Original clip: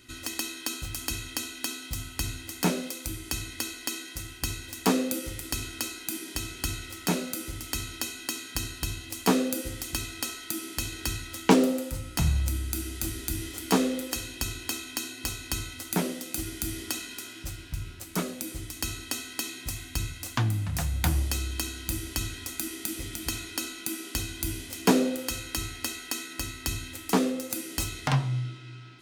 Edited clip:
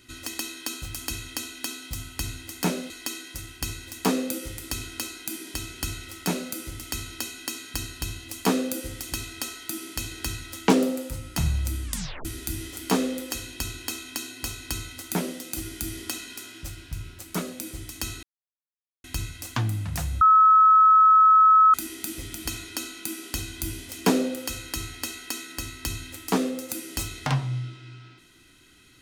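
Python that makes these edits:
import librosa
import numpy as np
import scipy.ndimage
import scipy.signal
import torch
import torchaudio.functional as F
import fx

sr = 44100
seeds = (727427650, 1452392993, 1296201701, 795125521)

y = fx.edit(x, sr, fx.cut(start_s=2.9, length_s=0.81),
    fx.tape_stop(start_s=12.65, length_s=0.41),
    fx.silence(start_s=19.04, length_s=0.81),
    fx.bleep(start_s=21.02, length_s=1.53, hz=1290.0, db=-12.0), tone=tone)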